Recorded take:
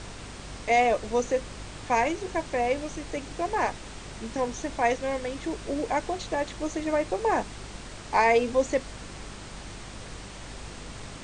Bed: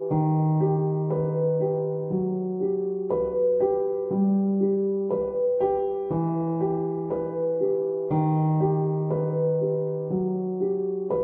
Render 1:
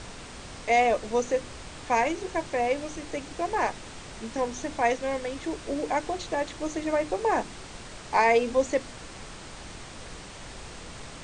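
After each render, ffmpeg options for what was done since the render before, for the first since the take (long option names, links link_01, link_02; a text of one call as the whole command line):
ffmpeg -i in.wav -af "bandreject=frequency=50:width_type=h:width=4,bandreject=frequency=100:width_type=h:width=4,bandreject=frequency=150:width_type=h:width=4,bandreject=frequency=200:width_type=h:width=4,bandreject=frequency=250:width_type=h:width=4,bandreject=frequency=300:width_type=h:width=4,bandreject=frequency=350:width_type=h:width=4,bandreject=frequency=400:width_type=h:width=4" out.wav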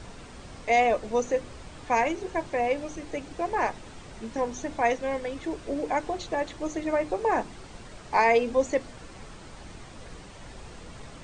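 ffmpeg -i in.wav -af "afftdn=noise_reduction=7:noise_floor=-43" out.wav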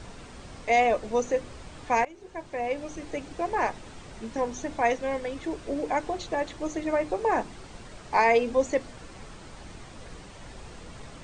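ffmpeg -i in.wav -filter_complex "[0:a]asplit=2[link_01][link_02];[link_01]atrim=end=2.05,asetpts=PTS-STARTPTS,afade=type=out:start_time=2.046:duration=0.004:curve=hsin:silence=0.0794328[link_03];[link_02]atrim=start=2.05,asetpts=PTS-STARTPTS,afade=type=in:duration=0.98:silence=0.0794328[link_04];[link_03][link_04]concat=n=2:v=0:a=1" out.wav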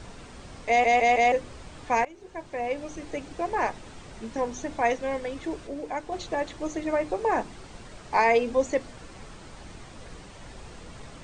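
ffmpeg -i in.wav -filter_complex "[0:a]asplit=7[link_01][link_02][link_03][link_04][link_05][link_06][link_07];[link_01]atrim=end=0.842[link_08];[link_02]atrim=start=0.678:end=0.842[link_09];[link_03]atrim=start=0.678:end=0.842[link_10];[link_04]atrim=start=0.678:end=0.842[link_11];[link_05]atrim=start=1.318:end=5.672[link_12];[link_06]atrim=start=5.668:end=6.122,asetpts=PTS-STARTPTS,volume=-5dB[link_13];[link_07]atrim=start=6.118[link_14];[link_08][link_09]acrossfade=duration=0.004:curve1=hsin:curve2=hsin[link_15];[link_15][link_10]acrossfade=duration=0.004:curve1=hsin:curve2=hsin[link_16];[link_16][link_11]acrossfade=duration=0.004:curve1=hsin:curve2=hsin[link_17];[link_17][link_12]acrossfade=duration=0.004:curve1=hsin:curve2=hsin[link_18];[link_18][link_13]acrossfade=duration=0.004:curve1=hsin:curve2=hsin[link_19];[link_19][link_14]acrossfade=duration=0.004:curve1=hsin:curve2=hsin" out.wav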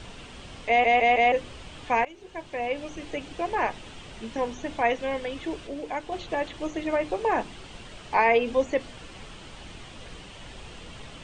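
ffmpeg -i in.wav -filter_complex "[0:a]acrossover=split=2800[link_01][link_02];[link_02]acompressor=threshold=-49dB:ratio=4:attack=1:release=60[link_03];[link_01][link_03]amix=inputs=2:normalize=0,equalizer=frequency=3000:width=2.1:gain=10" out.wav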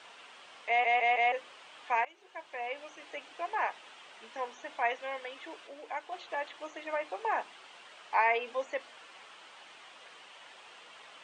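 ffmpeg -i in.wav -af "highpass=950,highshelf=frequency=2500:gain=-11" out.wav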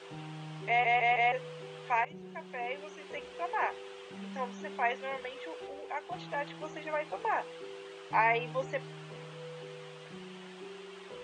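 ffmpeg -i in.wav -i bed.wav -filter_complex "[1:a]volume=-22dB[link_01];[0:a][link_01]amix=inputs=2:normalize=0" out.wav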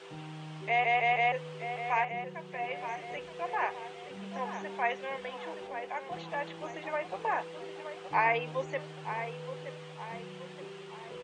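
ffmpeg -i in.wav -filter_complex "[0:a]asplit=2[link_01][link_02];[link_02]adelay=922,lowpass=frequency=2400:poles=1,volume=-9dB,asplit=2[link_03][link_04];[link_04]adelay=922,lowpass=frequency=2400:poles=1,volume=0.49,asplit=2[link_05][link_06];[link_06]adelay=922,lowpass=frequency=2400:poles=1,volume=0.49,asplit=2[link_07][link_08];[link_08]adelay=922,lowpass=frequency=2400:poles=1,volume=0.49,asplit=2[link_09][link_10];[link_10]adelay=922,lowpass=frequency=2400:poles=1,volume=0.49,asplit=2[link_11][link_12];[link_12]adelay=922,lowpass=frequency=2400:poles=1,volume=0.49[link_13];[link_01][link_03][link_05][link_07][link_09][link_11][link_13]amix=inputs=7:normalize=0" out.wav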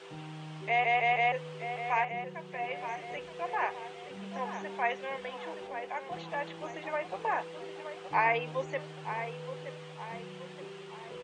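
ffmpeg -i in.wav -af anull out.wav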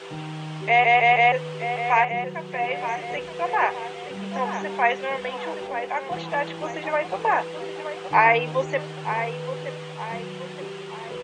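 ffmpeg -i in.wav -af "volume=10dB" out.wav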